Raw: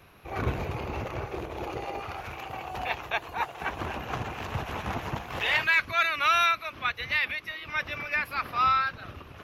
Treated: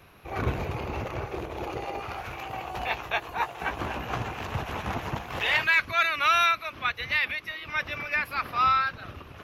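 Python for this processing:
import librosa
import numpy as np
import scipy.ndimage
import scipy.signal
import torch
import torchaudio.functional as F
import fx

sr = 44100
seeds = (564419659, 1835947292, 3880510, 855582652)

y = fx.doubler(x, sr, ms=17.0, db=-8.0, at=(2.01, 4.31))
y = y * 10.0 ** (1.0 / 20.0)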